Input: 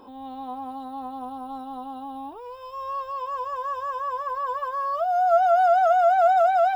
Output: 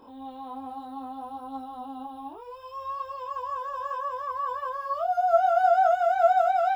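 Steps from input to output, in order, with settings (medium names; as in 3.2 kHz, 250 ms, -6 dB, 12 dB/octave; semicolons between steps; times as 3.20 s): chorus voices 2, 0.64 Hz, delay 24 ms, depth 2.9 ms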